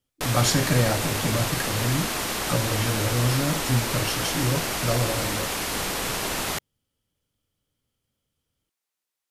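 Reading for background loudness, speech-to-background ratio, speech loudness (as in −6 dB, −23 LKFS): −26.5 LKFS, 0.0 dB, −26.5 LKFS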